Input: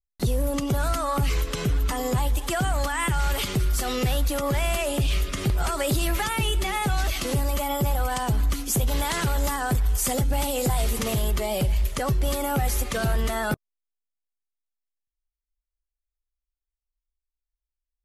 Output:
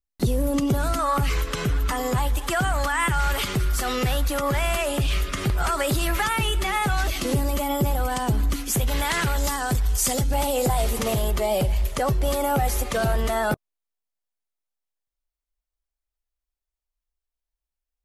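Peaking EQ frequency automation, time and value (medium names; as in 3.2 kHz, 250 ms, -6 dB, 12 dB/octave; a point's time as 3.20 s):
peaking EQ +5.5 dB 1.4 oct
270 Hz
from 0.99 s 1.4 kHz
from 7.04 s 290 Hz
from 8.56 s 1.9 kHz
from 9.36 s 5.6 kHz
from 10.34 s 680 Hz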